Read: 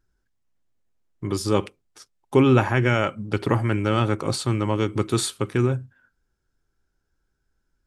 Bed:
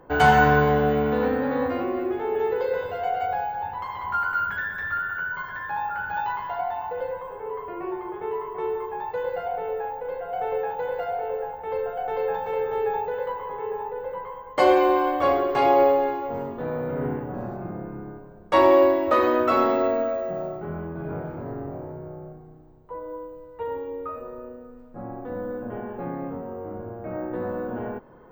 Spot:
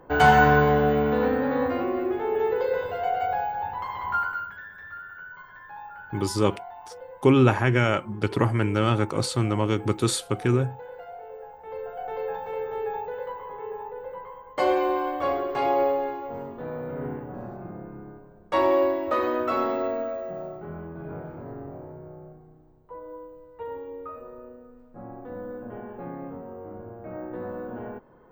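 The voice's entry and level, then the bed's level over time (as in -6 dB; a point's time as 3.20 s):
4.90 s, -1.0 dB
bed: 4.18 s 0 dB
4.55 s -12.5 dB
11.32 s -12.5 dB
12.04 s -5 dB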